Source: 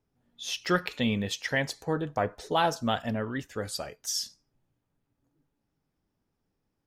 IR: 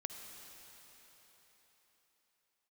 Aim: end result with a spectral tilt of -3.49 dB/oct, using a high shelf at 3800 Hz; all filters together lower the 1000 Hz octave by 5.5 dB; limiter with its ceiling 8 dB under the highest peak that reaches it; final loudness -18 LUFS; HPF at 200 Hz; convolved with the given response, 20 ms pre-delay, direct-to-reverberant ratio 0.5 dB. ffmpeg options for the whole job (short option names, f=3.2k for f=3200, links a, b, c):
-filter_complex "[0:a]highpass=200,equalizer=f=1k:t=o:g=-8.5,highshelf=f=3.8k:g=7.5,alimiter=limit=-19.5dB:level=0:latency=1,asplit=2[a][b];[1:a]atrim=start_sample=2205,adelay=20[c];[b][c]afir=irnorm=-1:irlink=0,volume=1dB[d];[a][d]amix=inputs=2:normalize=0,volume=12dB"